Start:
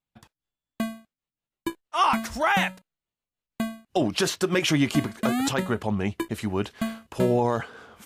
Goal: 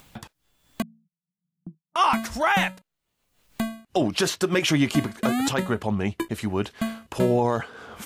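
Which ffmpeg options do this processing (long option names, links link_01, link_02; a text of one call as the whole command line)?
ffmpeg -i in.wav -filter_complex "[0:a]asettb=1/sr,asplit=3[link_01][link_02][link_03];[link_01]atrim=end=0.824[link_04];[link_02]atrim=start=0.82:end=1.96,asetpts=PTS-STARTPTS,afade=type=in:duration=0.004:curve=qsin,afade=type=out:start_time=1.136:duration=0.004:curve=qsin,asuperpass=centerf=170:order=4:qfactor=5[link_05];[link_03]atrim=start=1.956[link_06];[link_04][link_05]acrossfade=duration=0.004:curve1=hsin:curve2=qsin[link_07];[link_07][link_06]acrossfade=duration=0.004:curve1=qsin:curve2=hsin,acompressor=mode=upward:threshold=-29dB:ratio=2.5,asettb=1/sr,asplit=3[link_08][link_09][link_10];[link_08]atrim=end=2.594[link_11];[link_09]atrim=start=2.59:end=3.86,asetpts=PTS-STARTPTS,afade=type=in:duration=0.004:curve=qsin,afade=type=out:start_time=1.266:duration=0.004:curve=qsin,aeval=exprs='0.251*(cos(1*acos(clip(val(0)/0.251,-1,1)))-cos(1*PI/2))+0.00355*(cos(8*acos(clip(val(0)/0.251,-1,1)))-cos(8*PI/2))':channel_layout=same[link_12];[link_10]atrim=start=3.856[link_13];[link_11][link_12]acrossfade=duration=0.004:curve1=hsin:curve2=qsin[link_14];[link_14][link_13]acrossfade=duration=0.004:curve1=qsin:curve2=hsin,volume=1dB" out.wav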